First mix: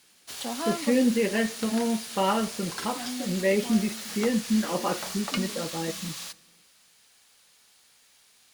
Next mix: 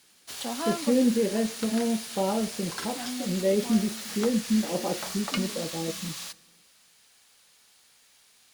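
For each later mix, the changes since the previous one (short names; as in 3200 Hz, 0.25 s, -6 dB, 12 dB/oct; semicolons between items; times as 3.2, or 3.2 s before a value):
speech: add band shelf 2000 Hz -13 dB 2.3 oct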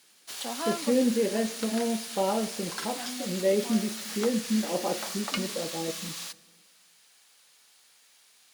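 speech: send +8.0 dB; master: add low shelf 220 Hz -11 dB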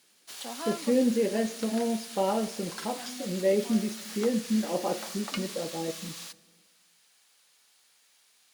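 background -4.0 dB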